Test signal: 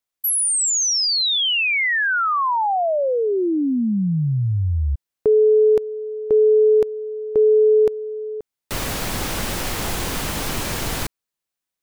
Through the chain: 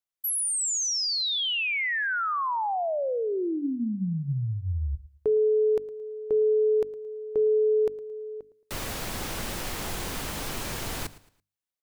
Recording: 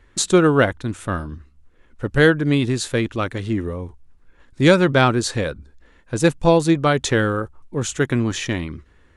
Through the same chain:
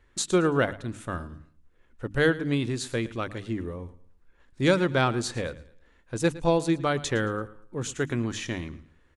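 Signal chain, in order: hum notches 50/100/150/200/250/300 Hz; feedback delay 111 ms, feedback 33%, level -18.5 dB; trim -8 dB

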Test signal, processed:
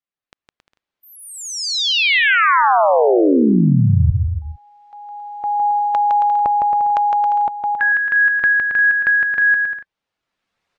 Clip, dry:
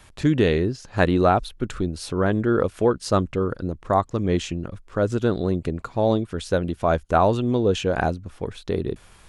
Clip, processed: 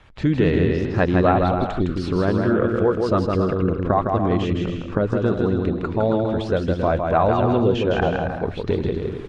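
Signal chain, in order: coarse spectral quantiser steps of 15 dB; recorder AGC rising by 13 dB/s; low-pass 3.2 kHz 12 dB/octave; bouncing-ball echo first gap 160 ms, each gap 0.7×, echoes 5

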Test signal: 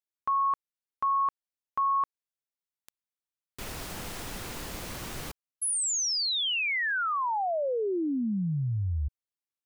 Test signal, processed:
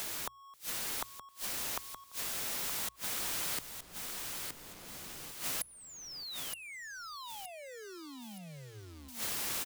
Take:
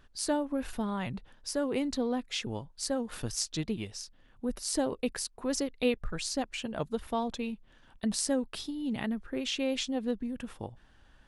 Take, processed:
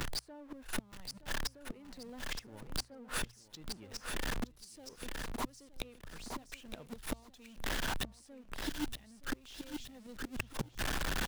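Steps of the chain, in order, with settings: jump at every zero crossing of -35.5 dBFS; recorder AGC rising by 6.9 dB/s; in parallel at -3 dB: saturation -26 dBFS; on the sum: inverted gate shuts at -21 dBFS, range -33 dB; short-mantissa float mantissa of 6-bit; hum notches 60/120 Hz; on a send: feedback delay 920 ms, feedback 19%, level -11 dB; on the sum: three bands compressed up and down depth 70%; trim -2 dB

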